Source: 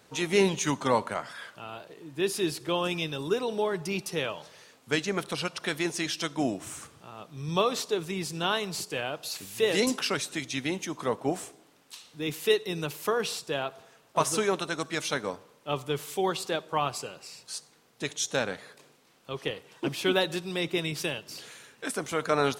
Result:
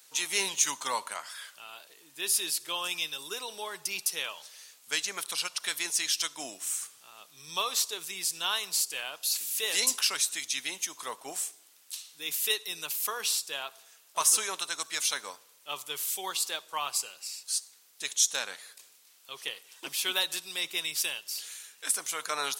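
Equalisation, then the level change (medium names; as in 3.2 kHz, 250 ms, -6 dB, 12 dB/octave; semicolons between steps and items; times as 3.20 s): differentiator; dynamic bell 1 kHz, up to +5 dB, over -60 dBFS, Q 2.6; +8.5 dB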